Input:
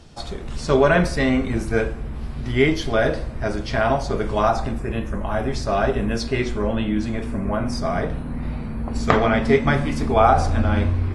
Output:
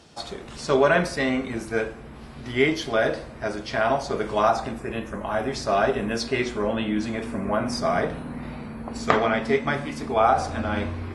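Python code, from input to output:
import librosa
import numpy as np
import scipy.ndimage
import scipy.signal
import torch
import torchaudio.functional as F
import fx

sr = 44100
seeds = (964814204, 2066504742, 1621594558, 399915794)

y = fx.highpass(x, sr, hz=290.0, slope=6)
y = fx.rider(y, sr, range_db=5, speed_s=2.0)
y = y * 10.0 ** (-2.5 / 20.0)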